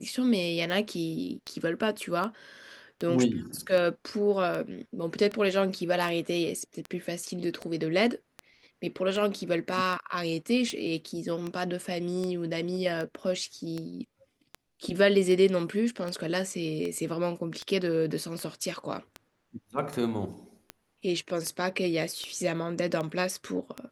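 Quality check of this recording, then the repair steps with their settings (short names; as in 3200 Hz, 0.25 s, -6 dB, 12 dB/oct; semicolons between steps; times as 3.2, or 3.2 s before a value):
tick 78 rpm -21 dBFS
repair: de-click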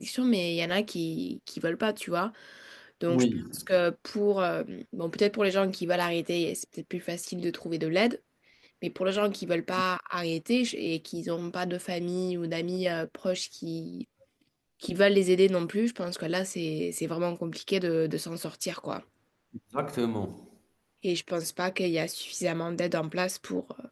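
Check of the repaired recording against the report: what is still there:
none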